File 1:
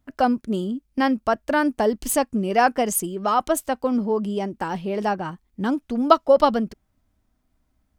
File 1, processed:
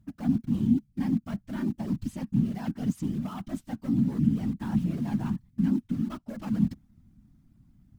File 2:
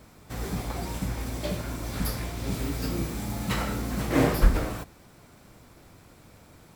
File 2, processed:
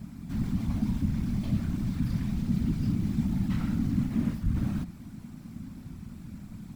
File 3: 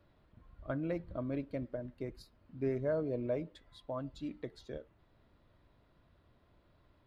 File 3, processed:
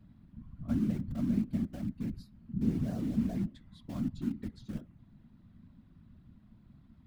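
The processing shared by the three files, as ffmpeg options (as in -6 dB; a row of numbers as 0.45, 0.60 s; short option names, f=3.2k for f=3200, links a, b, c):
-filter_complex "[0:a]areverse,acompressor=threshold=-28dB:ratio=12,areverse,asoftclip=type=tanh:threshold=-30dB,acrossover=split=5700[a][b];[b]acompressor=threshold=-57dB:ratio=4:attack=1:release=60[c];[a][c]amix=inputs=2:normalize=0,asplit=2[d][e];[e]aeval=exprs='(mod(100*val(0)+1,2)-1)/100':c=same,volume=-6.5dB[f];[d][f]amix=inputs=2:normalize=0,afftfilt=real='hypot(re,im)*cos(2*PI*random(0))':imag='hypot(re,im)*sin(2*PI*random(1))':win_size=512:overlap=0.75,lowshelf=f=320:t=q:w=3:g=12"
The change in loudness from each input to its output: -7.0, -0.5, +4.5 LU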